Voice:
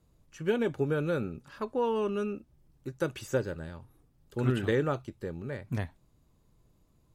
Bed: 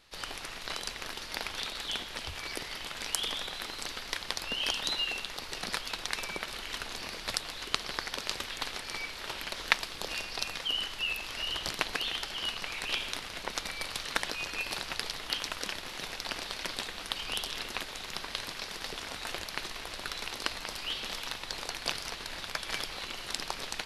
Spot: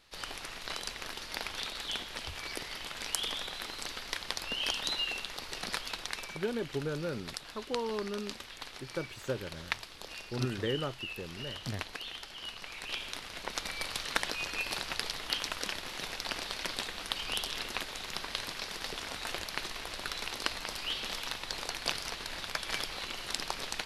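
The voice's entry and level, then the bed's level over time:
5.95 s, -6.0 dB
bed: 5.89 s -1.5 dB
6.57 s -8.5 dB
12.4 s -8.5 dB
13.79 s 0 dB

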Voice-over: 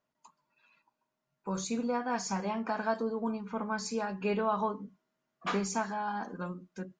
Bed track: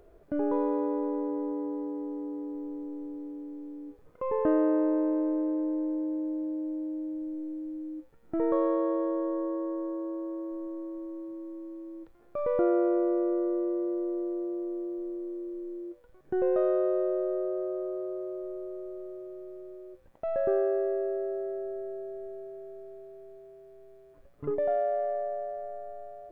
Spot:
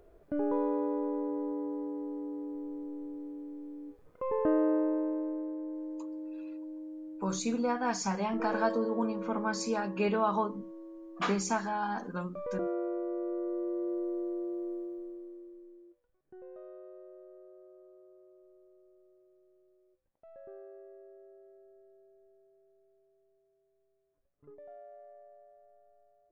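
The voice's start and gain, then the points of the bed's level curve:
5.75 s, +1.5 dB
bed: 4.73 s -2.5 dB
5.57 s -9 dB
13.04 s -9 dB
13.93 s -3 dB
14.71 s -3 dB
16.4 s -23 dB

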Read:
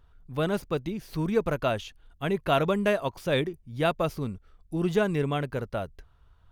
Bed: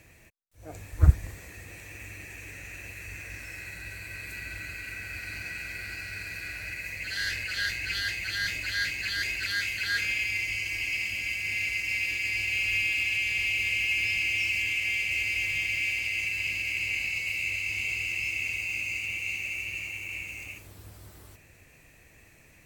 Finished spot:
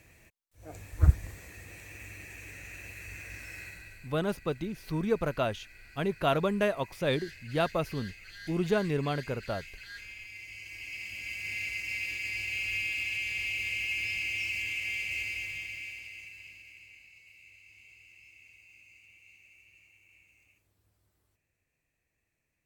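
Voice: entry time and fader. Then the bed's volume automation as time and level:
3.75 s, -3.0 dB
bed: 3.63 s -3 dB
4.19 s -17 dB
10.25 s -17 dB
11.46 s -5.5 dB
15.2 s -5.5 dB
17.06 s -25.5 dB

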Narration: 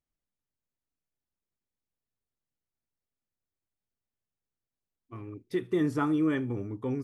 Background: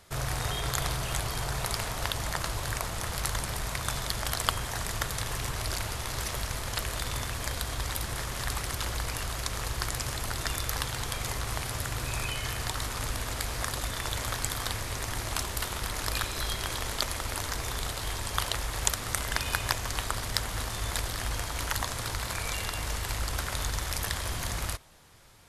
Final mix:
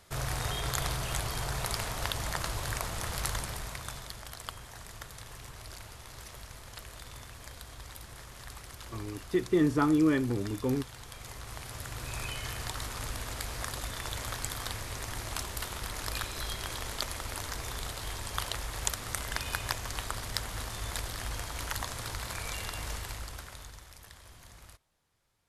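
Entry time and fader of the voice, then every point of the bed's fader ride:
3.80 s, +2.0 dB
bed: 3.3 s -2 dB
4.29 s -13.5 dB
11.03 s -13.5 dB
12.26 s -4.5 dB
22.93 s -4.5 dB
23.94 s -20 dB

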